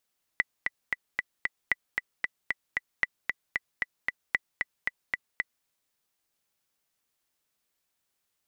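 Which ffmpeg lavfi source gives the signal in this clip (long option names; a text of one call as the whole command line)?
ffmpeg -f lavfi -i "aevalsrc='pow(10,(-10-4*gte(mod(t,5*60/228),60/228))/20)*sin(2*PI*1980*mod(t,60/228))*exp(-6.91*mod(t,60/228)/0.03)':duration=5.26:sample_rate=44100" out.wav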